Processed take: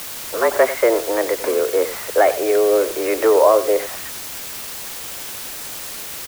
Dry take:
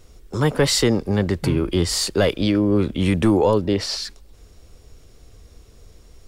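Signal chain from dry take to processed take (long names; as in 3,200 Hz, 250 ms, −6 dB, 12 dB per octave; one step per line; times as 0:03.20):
single-sideband voice off tune +110 Hz 280–2,100 Hz
bit-depth reduction 6 bits, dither triangular
single-tap delay 93 ms −14 dB
level +5 dB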